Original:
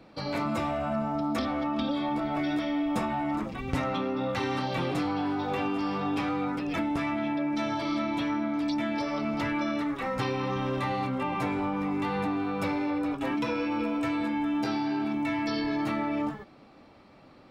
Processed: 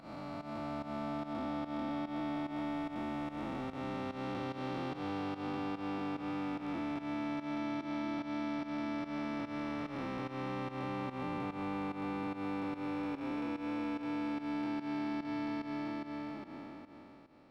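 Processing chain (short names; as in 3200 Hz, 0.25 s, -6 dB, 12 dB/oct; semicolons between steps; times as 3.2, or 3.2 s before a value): time blur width 1.36 s; pump 146 bpm, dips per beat 1, -14 dB, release 0.147 s; gain -6.5 dB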